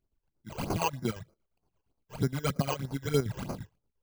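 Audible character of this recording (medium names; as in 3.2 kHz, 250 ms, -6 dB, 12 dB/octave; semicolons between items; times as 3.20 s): chopped level 8.6 Hz, depth 65%, duty 55%; aliases and images of a low sample rate 1.8 kHz, jitter 0%; phasing stages 12, 3.2 Hz, lowest notch 210–3300 Hz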